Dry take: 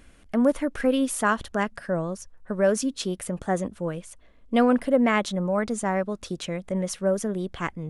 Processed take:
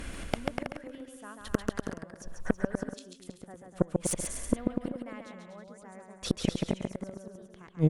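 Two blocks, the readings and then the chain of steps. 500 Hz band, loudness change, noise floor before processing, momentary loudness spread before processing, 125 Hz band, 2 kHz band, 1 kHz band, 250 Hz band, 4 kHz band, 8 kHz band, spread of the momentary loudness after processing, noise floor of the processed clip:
-12.0 dB, -9.0 dB, -54 dBFS, 11 LU, -1.5 dB, -12.5 dB, -14.5 dB, -8.5 dB, -6.5 dB, -4.5 dB, 17 LU, -53 dBFS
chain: inverted gate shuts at -22 dBFS, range -38 dB; bouncing-ball echo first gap 140 ms, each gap 0.75×, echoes 5; Chebyshev shaper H 4 -13 dB, 5 -15 dB, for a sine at -18.5 dBFS; trim +8 dB

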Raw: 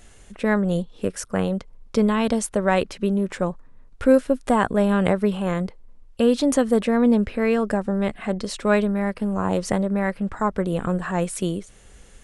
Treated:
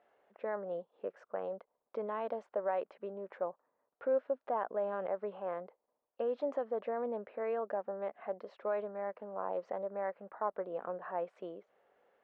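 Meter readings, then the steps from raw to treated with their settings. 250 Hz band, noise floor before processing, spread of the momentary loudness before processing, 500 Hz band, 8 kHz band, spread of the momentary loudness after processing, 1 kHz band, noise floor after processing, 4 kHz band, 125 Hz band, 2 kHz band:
-28.0 dB, -49 dBFS, 9 LU, -12.5 dB, under -40 dB, 9 LU, -12.0 dB, under -85 dBFS, under -30 dB, under -30 dB, -20.5 dB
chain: peak limiter -11 dBFS, peak gain reduction 6.5 dB; ladder band-pass 760 Hz, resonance 35%; distance through air 110 m

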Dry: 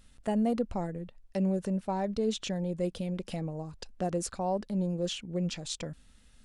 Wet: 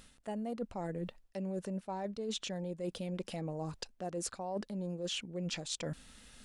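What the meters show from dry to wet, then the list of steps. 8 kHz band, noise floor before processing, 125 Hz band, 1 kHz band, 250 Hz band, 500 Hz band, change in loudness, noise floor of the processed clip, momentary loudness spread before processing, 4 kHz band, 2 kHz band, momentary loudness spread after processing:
-2.0 dB, -59 dBFS, -7.0 dB, -7.0 dB, -8.5 dB, -6.5 dB, -7.0 dB, -67 dBFS, 9 LU, -1.5 dB, -1.5 dB, 5 LU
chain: bass shelf 140 Hz -11 dB; reverse; compression 12:1, threshold -44 dBFS, peak gain reduction 18.5 dB; reverse; trim +8.5 dB

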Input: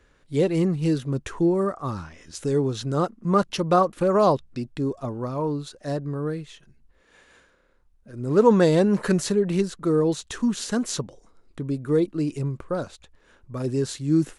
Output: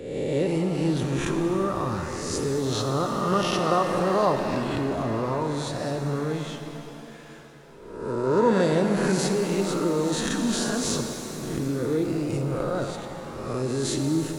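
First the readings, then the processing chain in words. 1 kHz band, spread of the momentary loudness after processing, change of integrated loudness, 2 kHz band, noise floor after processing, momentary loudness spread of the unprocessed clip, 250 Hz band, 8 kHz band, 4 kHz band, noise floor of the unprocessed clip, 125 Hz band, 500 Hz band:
0.0 dB, 10 LU, -1.5 dB, +3.5 dB, -43 dBFS, 13 LU, -2.0 dB, +4.0 dB, +4.0 dB, -61 dBFS, -1.5 dB, -1.5 dB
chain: reverse spectral sustain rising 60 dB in 0.95 s; in parallel at -3 dB: compressor with a negative ratio -29 dBFS; on the sum: pitch-shifted reverb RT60 3.4 s, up +7 st, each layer -8 dB, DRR 4.5 dB; trim -6.5 dB

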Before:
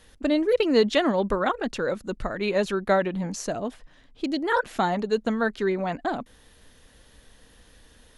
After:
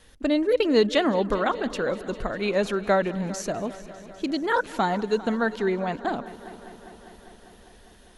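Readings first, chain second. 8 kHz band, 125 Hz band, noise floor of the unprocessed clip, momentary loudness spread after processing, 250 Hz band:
+0.5 dB, 0.0 dB, -56 dBFS, 16 LU, 0.0 dB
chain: wow and flutter 19 cents; multi-head delay 200 ms, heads first and second, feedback 69%, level -20.5 dB

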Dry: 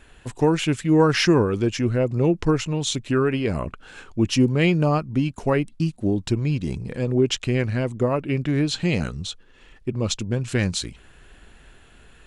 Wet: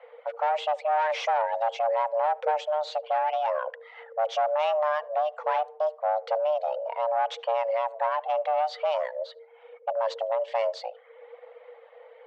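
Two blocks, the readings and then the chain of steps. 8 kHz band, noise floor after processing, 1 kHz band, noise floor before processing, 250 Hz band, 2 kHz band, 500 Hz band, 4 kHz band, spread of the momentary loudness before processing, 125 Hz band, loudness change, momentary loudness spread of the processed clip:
under -20 dB, -53 dBFS, +7.0 dB, -51 dBFS, under -40 dB, -7.0 dB, -2.0 dB, -11.0 dB, 11 LU, under -40 dB, -5.0 dB, 7 LU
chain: reverb removal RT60 0.59 s; level-controlled noise filter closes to 1.9 kHz, open at -14.5 dBFS; dynamic bell 1.1 kHz, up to -4 dB, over -33 dBFS, Q 0.88; saturation -23.5 dBFS, distortion -8 dB; Chebyshev shaper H 6 -33 dB, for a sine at -23.5 dBFS; frequency shift +450 Hz; tape spacing loss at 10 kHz 33 dB; on a send: tape echo 75 ms, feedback 52%, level -21.5 dB, low-pass 1.3 kHz; on the sum: trim +4.5 dB

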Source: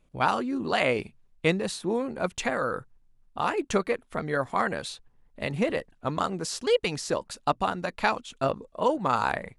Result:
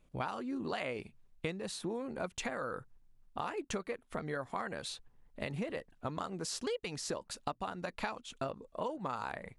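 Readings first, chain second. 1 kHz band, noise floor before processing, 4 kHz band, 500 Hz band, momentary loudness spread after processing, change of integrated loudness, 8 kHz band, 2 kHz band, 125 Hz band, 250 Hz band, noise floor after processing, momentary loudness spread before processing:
-12.5 dB, -63 dBFS, -9.5 dB, -12.0 dB, 4 LU, -11.5 dB, -6.0 dB, -12.0 dB, -9.5 dB, -10.0 dB, -68 dBFS, 7 LU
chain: compression 6:1, threshold -33 dBFS, peak gain reduction 15 dB; trim -2 dB

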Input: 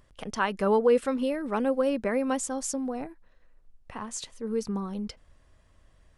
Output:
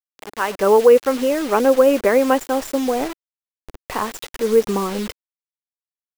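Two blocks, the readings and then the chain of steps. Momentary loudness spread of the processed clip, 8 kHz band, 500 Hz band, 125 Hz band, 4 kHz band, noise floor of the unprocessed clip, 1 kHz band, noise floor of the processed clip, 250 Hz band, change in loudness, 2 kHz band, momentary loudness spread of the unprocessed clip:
14 LU, +3.5 dB, +12.0 dB, no reading, +10.0 dB, -61 dBFS, +10.5 dB, under -85 dBFS, +7.0 dB, +10.5 dB, +9.0 dB, 14 LU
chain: level rider gain up to 16 dB; Savitzky-Golay filter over 25 samples; bit crusher 5-bit; resonant low shelf 270 Hz -6.5 dB, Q 1.5; trim -1 dB

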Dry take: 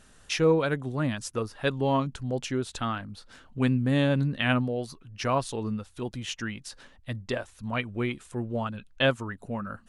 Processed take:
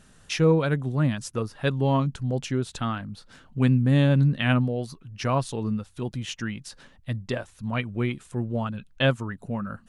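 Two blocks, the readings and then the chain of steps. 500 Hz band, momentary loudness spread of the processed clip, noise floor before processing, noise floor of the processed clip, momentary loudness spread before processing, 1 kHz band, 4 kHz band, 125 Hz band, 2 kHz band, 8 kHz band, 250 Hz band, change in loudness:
+0.5 dB, 14 LU, -56 dBFS, -56 dBFS, 12 LU, 0.0 dB, 0.0 dB, +6.5 dB, 0.0 dB, 0.0 dB, +3.0 dB, +3.0 dB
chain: peaking EQ 150 Hz +7.5 dB 1.1 oct

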